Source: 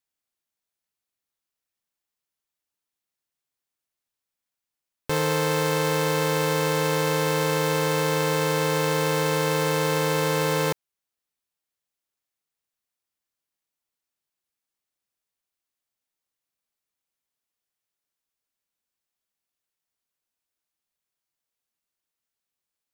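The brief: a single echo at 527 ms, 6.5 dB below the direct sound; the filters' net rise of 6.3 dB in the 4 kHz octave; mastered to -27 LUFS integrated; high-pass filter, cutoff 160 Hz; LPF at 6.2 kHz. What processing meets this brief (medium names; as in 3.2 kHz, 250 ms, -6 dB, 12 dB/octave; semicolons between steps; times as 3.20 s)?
high-pass 160 Hz; low-pass 6.2 kHz; peaking EQ 4 kHz +8.5 dB; delay 527 ms -6.5 dB; trim -5.5 dB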